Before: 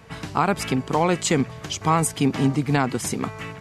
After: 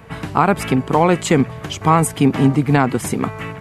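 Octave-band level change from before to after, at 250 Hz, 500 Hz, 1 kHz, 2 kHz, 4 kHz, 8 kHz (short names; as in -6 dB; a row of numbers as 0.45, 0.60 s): +6.5, +6.5, +6.0, +5.0, +1.0, +0.5 dB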